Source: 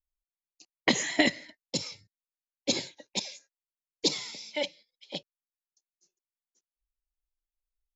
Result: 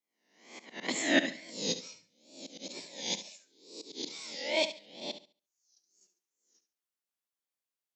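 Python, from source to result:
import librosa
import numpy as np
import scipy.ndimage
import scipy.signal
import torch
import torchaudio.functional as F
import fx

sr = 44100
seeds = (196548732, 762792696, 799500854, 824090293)

y = fx.spec_swells(x, sr, rise_s=0.64)
y = fx.wow_flutter(y, sr, seeds[0], rate_hz=2.1, depth_cents=130.0)
y = fx.auto_swell(y, sr, attack_ms=393.0)
y = scipy.signal.sosfilt(scipy.signal.butter(4, 180.0, 'highpass', fs=sr, output='sos'), y)
y = fx.room_flutter(y, sr, wall_m=12.0, rt60_s=0.35)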